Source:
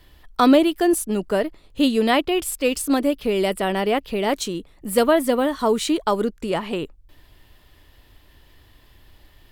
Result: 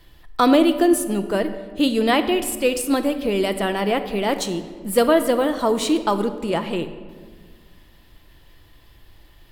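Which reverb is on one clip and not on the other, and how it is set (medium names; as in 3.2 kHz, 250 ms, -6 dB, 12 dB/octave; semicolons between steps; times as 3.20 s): simulated room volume 2000 m³, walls mixed, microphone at 0.75 m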